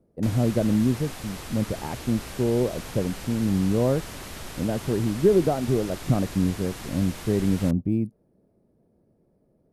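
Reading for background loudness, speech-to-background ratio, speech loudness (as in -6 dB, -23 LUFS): -38.0 LUFS, 12.5 dB, -25.5 LUFS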